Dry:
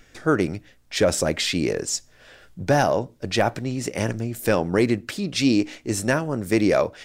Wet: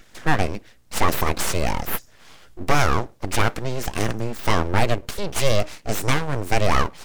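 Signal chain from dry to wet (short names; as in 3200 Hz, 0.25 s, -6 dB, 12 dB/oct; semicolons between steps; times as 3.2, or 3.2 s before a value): full-wave rectifier; gain +3.5 dB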